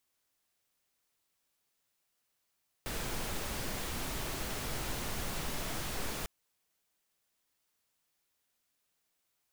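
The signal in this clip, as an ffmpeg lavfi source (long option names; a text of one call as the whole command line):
ffmpeg -f lavfi -i "anoisesrc=color=pink:amplitude=0.0724:duration=3.4:sample_rate=44100:seed=1" out.wav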